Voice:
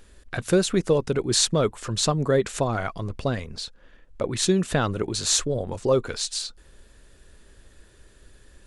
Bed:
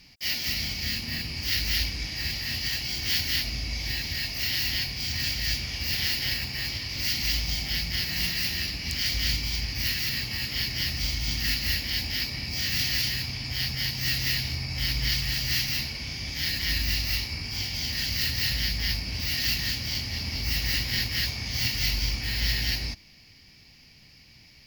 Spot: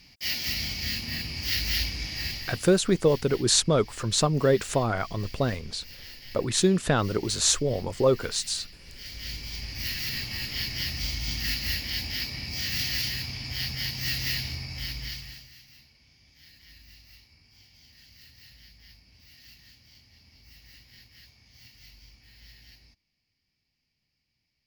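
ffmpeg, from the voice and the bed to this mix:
ffmpeg -i stem1.wav -i stem2.wav -filter_complex "[0:a]adelay=2150,volume=-0.5dB[link_01];[1:a]volume=14.5dB,afade=type=out:start_time=2.21:duration=0.49:silence=0.141254,afade=type=in:start_time=8.94:duration=1.24:silence=0.16788,afade=type=out:start_time=14.39:duration=1.12:silence=0.0668344[link_02];[link_01][link_02]amix=inputs=2:normalize=0" out.wav

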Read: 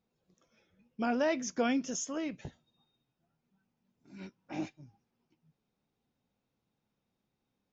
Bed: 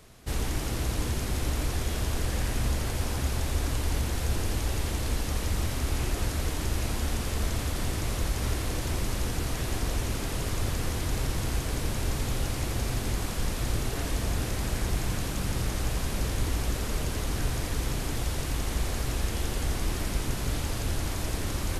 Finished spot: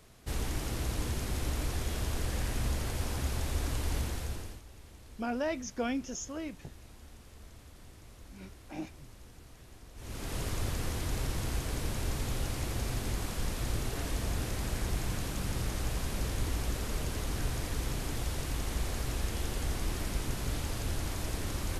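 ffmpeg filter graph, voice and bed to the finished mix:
ffmpeg -i stem1.wav -i stem2.wav -filter_complex "[0:a]adelay=4200,volume=-3dB[link_01];[1:a]volume=14dB,afade=type=out:start_time=4:duration=0.62:silence=0.11885,afade=type=in:start_time=9.95:duration=0.42:silence=0.11885[link_02];[link_01][link_02]amix=inputs=2:normalize=0" out.wav

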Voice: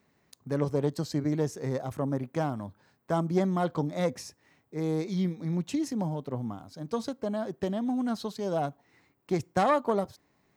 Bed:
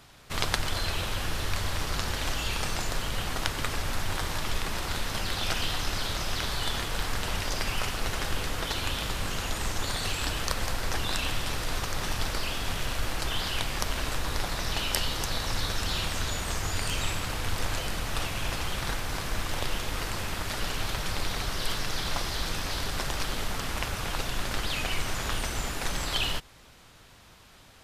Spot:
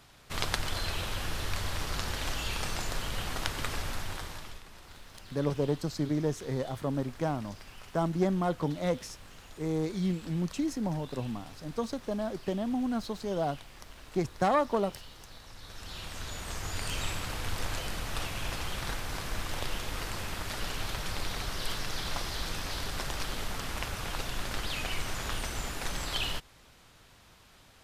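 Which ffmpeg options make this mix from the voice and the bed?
ffmpeg -i stem1.wav -i stem2.wav -filter_complex "[0:a]adelay=4850,volume=-1.5dB[link_01];[1:a]volume=12dB,afade=type=out:start_time=3.77:duration=0.85:silence=0.158489,afade=type=in:start_time=15.59:duration=1.4:silence=0.16788[link_02];[link_01][link_02]amix=inputs=2:normalize=0" out.wav

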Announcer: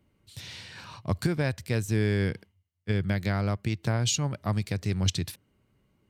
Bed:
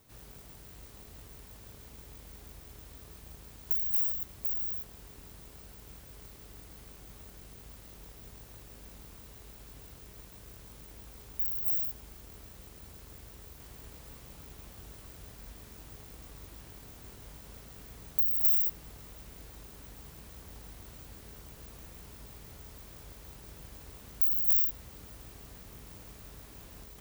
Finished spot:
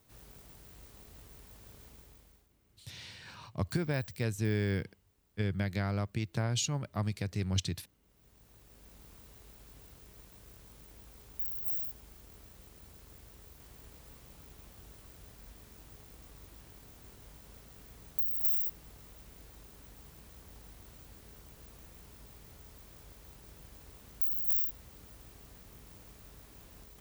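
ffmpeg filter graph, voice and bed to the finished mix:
ffmpeg -i stem1.wav -i stem2.wav -filter_complex "[0:a]adelay=2500,volume=-5.5dB[link_01];[1:a]volume=14.5dB,afade=type=out:start_time=1.84:duration=0.65:silence=0.112202,afade=type=in:start_time=8.03:duration=1.08:silence=0.125893[link_02];[link_01][link_02]amix=inputs=2:normalize=0" out.wav

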